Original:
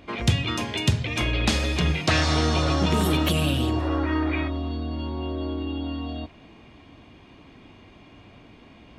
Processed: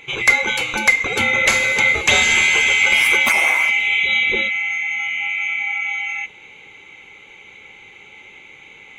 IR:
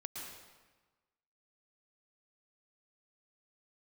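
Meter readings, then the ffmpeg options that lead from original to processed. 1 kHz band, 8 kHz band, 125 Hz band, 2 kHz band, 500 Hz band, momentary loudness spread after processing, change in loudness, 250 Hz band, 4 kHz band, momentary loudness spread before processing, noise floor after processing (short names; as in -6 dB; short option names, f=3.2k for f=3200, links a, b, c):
+4.0 dB, +11.0 dB, under -10 dB, +18.0 dB, +1.0 dB, 8 LU, +9.5 dB, -9.5 dB, +7.5 dB, 9 LU, -44 dBFS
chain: -af "afftfilt=real='real(if(lt(b,920),b+92*(1-2*mod(floor(b/92),2)),b),0)':imag='imag(if(lt(b,920),b+92*(1-2*mod(floor(b/92),2)),b),0)':win_size=2048:overlap=0.75,volume=6.5dB"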